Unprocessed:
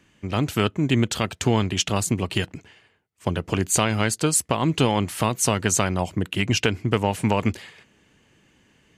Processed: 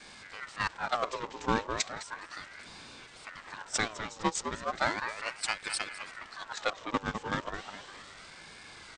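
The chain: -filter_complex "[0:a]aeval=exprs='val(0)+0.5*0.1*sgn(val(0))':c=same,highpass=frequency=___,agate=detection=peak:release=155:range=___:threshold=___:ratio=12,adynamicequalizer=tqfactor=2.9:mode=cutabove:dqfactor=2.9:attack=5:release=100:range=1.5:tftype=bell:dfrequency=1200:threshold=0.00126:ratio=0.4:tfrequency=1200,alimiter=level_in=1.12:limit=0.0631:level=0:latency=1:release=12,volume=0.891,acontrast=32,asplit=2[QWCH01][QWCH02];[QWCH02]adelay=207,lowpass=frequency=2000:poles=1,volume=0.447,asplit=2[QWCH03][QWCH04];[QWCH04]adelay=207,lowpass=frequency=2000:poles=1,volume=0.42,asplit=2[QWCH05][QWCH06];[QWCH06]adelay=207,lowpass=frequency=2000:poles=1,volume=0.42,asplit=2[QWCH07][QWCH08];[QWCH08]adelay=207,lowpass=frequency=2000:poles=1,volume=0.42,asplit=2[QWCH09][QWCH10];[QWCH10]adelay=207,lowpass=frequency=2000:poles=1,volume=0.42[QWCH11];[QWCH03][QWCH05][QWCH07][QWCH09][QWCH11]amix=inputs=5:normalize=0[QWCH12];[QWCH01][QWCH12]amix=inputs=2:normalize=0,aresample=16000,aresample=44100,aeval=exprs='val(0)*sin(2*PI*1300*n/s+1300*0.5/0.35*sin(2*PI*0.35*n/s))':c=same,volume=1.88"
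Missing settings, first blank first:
170, 0.0282, 0.2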